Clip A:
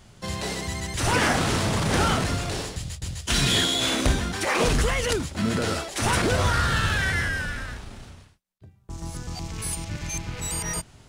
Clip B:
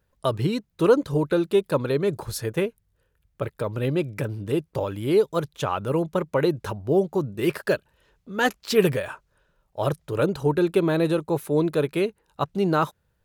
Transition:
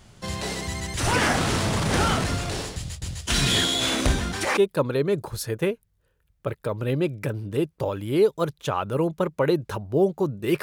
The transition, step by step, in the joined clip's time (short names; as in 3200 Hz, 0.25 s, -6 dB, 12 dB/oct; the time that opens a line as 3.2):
clip A
4.57 switch to clip B from 1.52 s